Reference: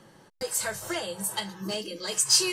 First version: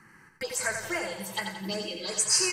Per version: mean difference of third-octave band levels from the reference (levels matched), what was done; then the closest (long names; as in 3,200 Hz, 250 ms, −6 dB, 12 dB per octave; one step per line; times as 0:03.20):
4.5 dB: parametric band 2,100 Hz +12 dB 1.3 octaves
phaser swept by the level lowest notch 550 Hz, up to 3,500 Hz, full sweep at −23 dBFS
repeating echo 88 ms, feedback 49%, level −6 dB
level −2 dB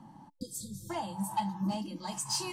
8.0 dB: drawn EQ curve 100 Hz 0 dB, 280 Hz +8 dB, 440 Hz −22 dB, 870 Hz +9 dB, 1,400 Hz −12 dB
soft clipping −20.5 dBFS, distortion −22 dB
healed spectral selection 0:00.39–0:00.88, 530–3,200 Hz before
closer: first